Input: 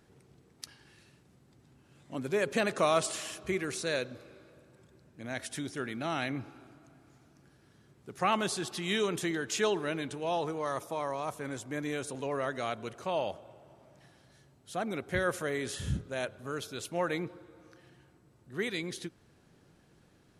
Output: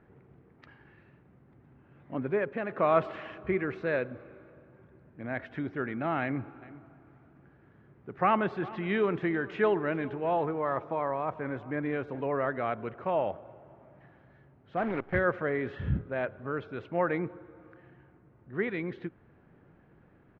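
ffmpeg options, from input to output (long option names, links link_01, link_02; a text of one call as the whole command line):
ffmpeg -i in.wav -filter_complex "[0:a]asplit=3[link_01][link_02][link_03];[link_01]afade=type=out:start_time=6.61:duration=0.02[link_04];[link_02]aecho=1:1:405:0.106,afade=type=in:start_time=6.61:duration=0.02,afade=type=out:start_time=12.23:duration=0.02[link_05];[link_03]afade=type=in:start_time=12.23:duration=0.02[link_06];[link_04][link_05][link_06]amix=inputs=3:normalize=0,asettb=1/sr,asplit=3[link_07][link_08][link_09];[link_07]atrim=end=14.774[link_10];[link_08]atrim=start=14.77:end=15.19,asetpts=PTS-STARTPTS,afade=type=in:duration=0.004:curve=qsin,afade=type=out:start_time=0.416:duration=0.004:curve=qsin,acrusher=bits=7:dc=4:mix=0:aa=0.000001[link_11];[link_09]atrim=start=15.186[link_12];[link_10][link_11]acrossfade=duration=0.004:curve1=hsin:curve2=qsin[link_13];[link_13][link_12]acrossfade=duration=0.004:curve1=qsin:curve2=hsin,asplit=3[link_14][link_15][link_16];[link_14]atrim=end=2.55,asetpts=PTS-STARTPTS,afade=type=out:start_time=2.25:duration=0.3:silence=0.398107[link_17];[link_15]atrim=start=2.55:end=2.66,asetpts=PTS-STARTPTS,volume=-8dB[link_18];[link_16]atrim=start=2.66,asetpts=PTS-STARTPTS,afade=type=in:duration=0.3:silence=0.398107[link_19];[link_17][link_18][link_19]concat=n=3:v=0:a=1,lowpass=frequency=2100:width=0.5412,lowpass=frequency=2100:width=1.3066,volume=3.5dB" out.wav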